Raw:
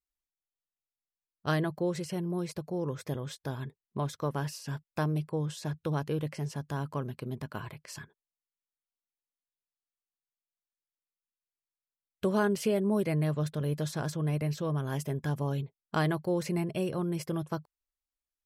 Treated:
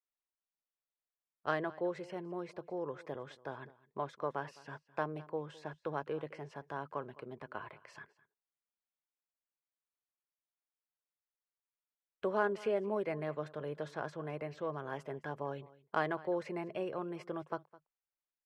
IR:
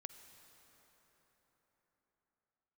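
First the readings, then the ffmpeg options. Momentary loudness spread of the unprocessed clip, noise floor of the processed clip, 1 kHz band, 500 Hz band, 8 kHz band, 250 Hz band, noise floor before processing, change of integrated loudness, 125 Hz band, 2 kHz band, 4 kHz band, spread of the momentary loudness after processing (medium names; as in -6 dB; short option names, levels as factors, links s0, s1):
11 LU, under -85 dBFS, -1.5 dB, -3.5 dB, under -20 dB, -11.0 dB, under -85 dBFS, -7.0 dB, -16.5 dB, -2.5 dB, -11.5 dB, 12 LU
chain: -filter_complex "[0:a]acrossover=split=370 2500:gain=0.141 1 0.2[s0][s1][s2];[s0][s1][s2]amix=inputs=3:normalize=0,aecho=1:1:210:0.0944,adynamicsmooth=sensitivity=4.5:basefreq=6400,volume=0.891"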